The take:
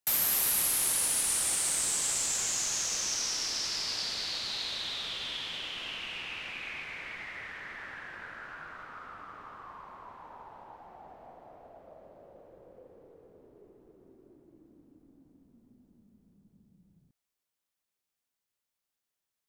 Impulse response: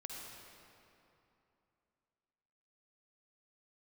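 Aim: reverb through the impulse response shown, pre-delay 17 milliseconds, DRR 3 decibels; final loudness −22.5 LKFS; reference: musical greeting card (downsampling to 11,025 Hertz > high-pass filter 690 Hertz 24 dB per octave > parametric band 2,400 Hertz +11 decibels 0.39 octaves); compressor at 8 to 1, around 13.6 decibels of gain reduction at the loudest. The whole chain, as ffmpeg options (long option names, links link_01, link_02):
-filter_complex "[0:a]acompressor=threshold=-39dB:ratio=8,asplit=2[link_01][link_02];[1:a]atrim=start_sample=2205,adelay=17[link_03];[link_02][link_03]afir=irnorm=-1:irlink=0,volume=-1dB[link_04];[link_01][link_04]amix=inputs=2:normalize=0,aresample=11025,aresample=44100,highpass=frequency=690:width=0.5412,highpass=frequency=690:width=1.3066,equalizer=frequency=2400:width_type=o:width=0.39:gain=11,volume=15dB"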